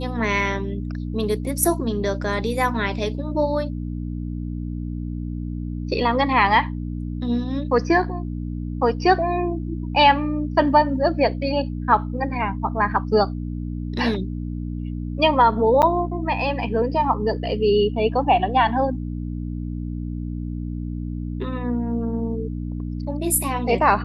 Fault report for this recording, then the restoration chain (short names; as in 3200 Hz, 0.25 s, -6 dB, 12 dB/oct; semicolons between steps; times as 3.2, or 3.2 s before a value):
hum 60 Hz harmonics 5 -28 dBFS
15.82–15.83 gap 8.6 ms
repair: de-hum 60 Hz, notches 5; interpolate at 15.82, 8.6 ms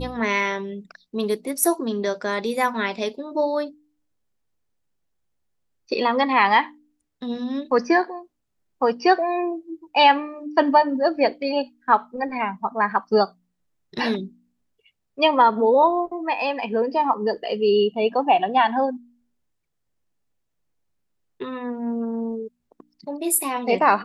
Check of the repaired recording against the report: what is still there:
none